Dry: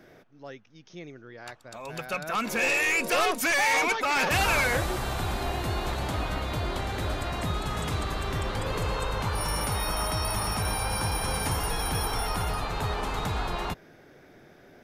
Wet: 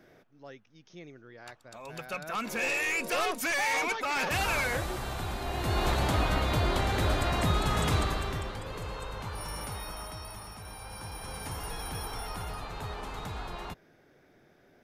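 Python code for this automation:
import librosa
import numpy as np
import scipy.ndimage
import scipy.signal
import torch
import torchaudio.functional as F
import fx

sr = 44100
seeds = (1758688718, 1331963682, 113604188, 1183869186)

y = fx.gain(x, sr, db=fx.line((5.44, -5.0), (5.84, 3.0), (7.98, 3.0), (8.62, -9.0), (9.68, -9.0), (10.59, -16.5), (11.68, -8.5)))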